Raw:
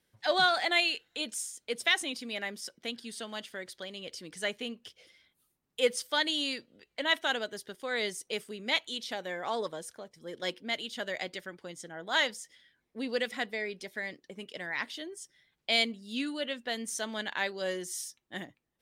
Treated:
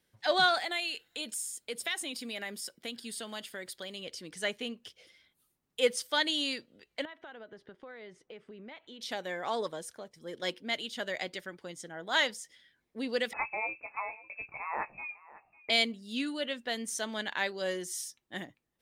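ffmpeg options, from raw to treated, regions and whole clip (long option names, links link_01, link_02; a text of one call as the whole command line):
ffmpeg -i in.wav -filter_complex "[0:a]asettb=1/sr,asplit=3[link_01][link_02][link_03];[link_01]atrim=end=0.584[link_04];[link_02]atrim=start=0.58:end=4.04,asetpts=PTS-STARTPTS,afade=type=in:duration=0.004:curve=qsin,afade=type=out:start_time=3.456:duration=0.004:curve=qsin,highshelf=frequency=8100:gain=9.5,bandreject=frequency=6000:width=8.6,acompressor=threshold=-36dB:ratio=2:attack=3.2:release=140:knee=1:detection=peak[link_05];[link_03]atrim=start=4.036[link_06];[link_04][link_05]acrossfade=duration=0.004:curve1=hsin:curve2=qsin[link_07];[link_07][link_06]acrossfade=duration=0.004:curve1=qsin:curve2=hsin,asettb=1/sr,asplit=3[link_08][link_09][link_10];[link_08]atrim=end=7.054[link_11];[link_09]atrim=start=7.05:end=9.01,asetpts=PTS-STARTPTS,afade=type=in:duration=0.004:curve=qsin,afade=type=out:start_time=1.956:duration=0.004:curve=qsin,lowpass=1900,acompressor=threshold=-44dB:ratio=8:attack=3.2:release=140:knee=1:detection=peak[link_12];[link_10]atrim=start=9.006[link_13];[link_11][link_12]acrossfade=duration=0.004:curve1=hsin:curve2=qsin[link_14];[link_14][link_13]acrossfade=duration=0.004:curve1=qsin:curve2=hsin,asettb=1/sr,asplit=3[link_15][link_16][link_17];[link_15]atrim=end=13.334[link_18];[link_16]atrim=start=13.33:end=15.7,asetpts=PTS-STARTPTS,afade=type=in:duration=0.004:curve=qsin,afade=type=out:start_time=2.366:duration=0.004:curve=qsin,asplit=2[link_19][link_20];[link_20]adelay=19,volume=-8dB[link_21];[link_19][link_21]amix=inputs=2:normalize=0,atrim=end_sample=104517,aecho=1:1:551:0.106,atrim=end_sample=104517,lowpass=frequency=2400:width_type=q:width=0.5098,lowpass=frequency=2400:width_type=q:width=0.6013,lowpass=frequency=2400:width_type=q:width=0.9,lowpass=frequency=2400:width_type=q:width=2.563,afreqshift=-2800[link_22];[link_17]atrim=start=15.696[link_23];[link_18][link_22]acrossfade=duration=0.004:curve1=hsin:curve2=qsin[link_24];[link_24][link_23]acrossfade=duration=0.004:curve1=qsin:curve2=hsin" out.wav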